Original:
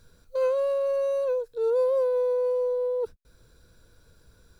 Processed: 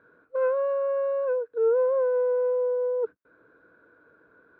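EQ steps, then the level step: dynamic bell 790 Hz, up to -5 dB, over -37 dBFS, Q 0.78; cabinet simulation 260–2100 Hz, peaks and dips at 300 Hz +10 dB, 440 Hz +5 dB, 650 Hz +4 dB, 1.1 kHz +6 dB, 1.5 kHz +10 dB; 0.0 dB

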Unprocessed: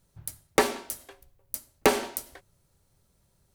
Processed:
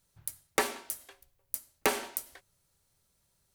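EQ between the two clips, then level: tilt shelf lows -5 dB, about 930 Hz; dynamic bell 4.6 kHz, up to -4 dB, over -42 dBFS, Q 0.8; -5.5 dB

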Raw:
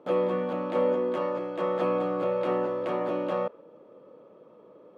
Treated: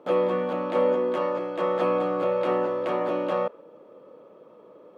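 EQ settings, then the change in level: bass shelf 270 Hz -5.5 dB; +4.0 dB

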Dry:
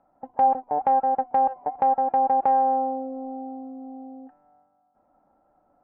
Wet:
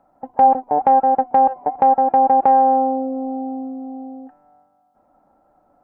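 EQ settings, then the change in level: dynamic bell 270 Hz, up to +4 dB, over -39 dBFS, Q 0.77; +6.0 dB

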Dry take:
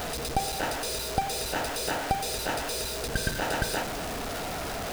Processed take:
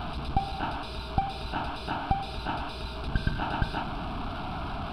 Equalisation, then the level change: tape spacing loss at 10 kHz 26 dB; static phaser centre 1.9 kHz, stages 6; +5.0 dB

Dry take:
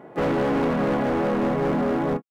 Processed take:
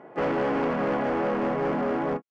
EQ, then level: distance through air 110 m; bass shelf 250 Hz -10 dB; peaking EQ 3.8 kHz -7.5 dB 0.23 oct; 0.0 dB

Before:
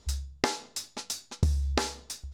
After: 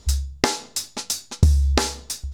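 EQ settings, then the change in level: bass shelf 190 Hz +5 dB; treble shelf 5.8 kHz +6 dB; +6.0 dB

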